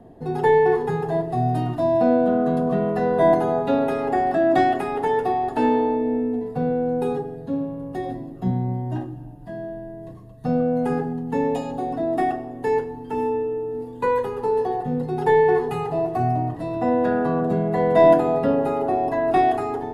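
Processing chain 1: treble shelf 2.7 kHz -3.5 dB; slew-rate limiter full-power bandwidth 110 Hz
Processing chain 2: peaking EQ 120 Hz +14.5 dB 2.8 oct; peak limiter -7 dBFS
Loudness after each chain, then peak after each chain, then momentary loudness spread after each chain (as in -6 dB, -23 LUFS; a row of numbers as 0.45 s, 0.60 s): -22.5 LUFS, -17.0 LUFS; -7.5 dBFS, -7.0 dBFS; 11 LU, 7 LU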